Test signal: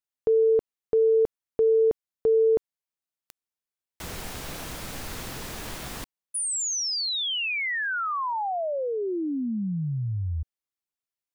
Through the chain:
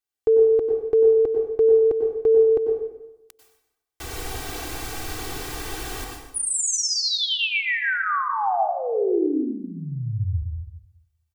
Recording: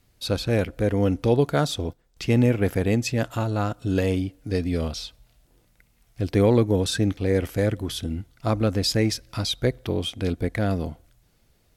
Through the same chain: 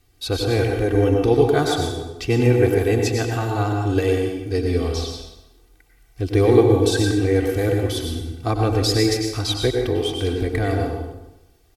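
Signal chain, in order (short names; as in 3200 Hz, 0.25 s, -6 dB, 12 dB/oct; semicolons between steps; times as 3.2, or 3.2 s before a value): comb 2.6 ms, depth 81%; feedback echo 0.124 s, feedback 34%, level -16 dB; plate-style reverb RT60 0.92 s, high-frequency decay 0.75×, pre-delay 85 ms, DRR 2 dB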